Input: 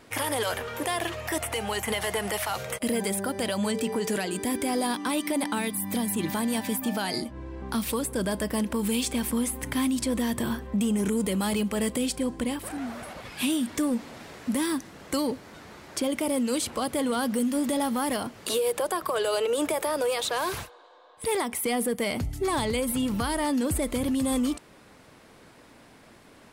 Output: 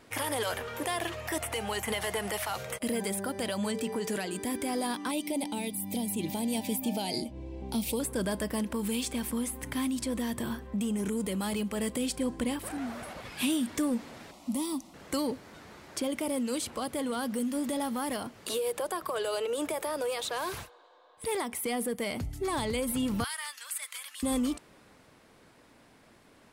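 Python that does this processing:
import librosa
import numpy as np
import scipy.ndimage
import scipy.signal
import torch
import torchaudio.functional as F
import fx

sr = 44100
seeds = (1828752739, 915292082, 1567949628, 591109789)

y = fx.band_shelf(x, sr, hz=1400.0, db=-15.5, octaves=1.0, at=(5.11, 8.0))
y = fx.fixed_phaser(y, sr, hz=440.0, stages=6, at=(14.31, 14.94))
y = fx.highpass(y, sr, hz=1300.0, slope=24, at=(23.24, 24.23))
y = fx.rider(y, sr, range_db=10, speed_s=2.0)
y = y * librosa.db_to_amplitude(-4.5)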